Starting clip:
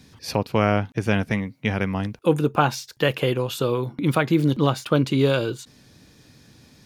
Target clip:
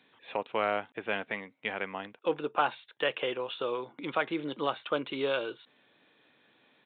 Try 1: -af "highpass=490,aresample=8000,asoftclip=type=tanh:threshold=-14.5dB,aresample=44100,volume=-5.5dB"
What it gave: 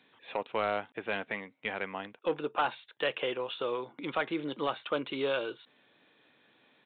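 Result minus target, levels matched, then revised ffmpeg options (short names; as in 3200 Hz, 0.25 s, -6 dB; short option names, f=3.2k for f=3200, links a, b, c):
soft clip: distortion +10 dB
-af "highpass=490,aresample=8000,asoftclip=type=tanh:threshold=-7dB,aresample=44100,volume=-5.5dB"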